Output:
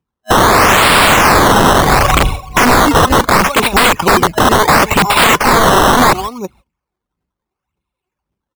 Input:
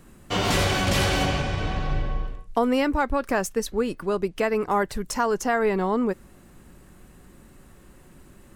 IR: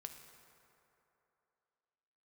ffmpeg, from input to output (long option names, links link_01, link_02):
-filter_complex "[0:a]highpass=frequency=49:width=0.5412,highpass=frequency=49:width=1.3066,agate=range=-51dB:threshold=-41dB:ratio=16:detection=peak,aphaser=in_gain=1:out_gain=1:delay=2.9:decay=0.69:speed=1.8:type=triangular,superequalizer=9b=2.24:11b=0.355:12b=3.98:15b=0.501,asplit=2[link_01][link_02];[link_02]adelay=338.2,volume=-23dB,highshelf=frequency=4000:gain=-7.61[link_03];[link_01][link_03]amix=inputs=2:normalize=0,acrusher=samples=13:mix=1:aa=0.000001:lfo=1:lforange=13:lforate=0.72,aeval=exprs='(mod(9.44*val(0)+1,2)-1)/9.44':channel_layout=same,equalizer=frequency=1100:width_type=o:width=0.63:gain=5.5,alimiter=level_in=20dB:limit=-1dB:release=50:level=0:latency=1,volume=-1dB"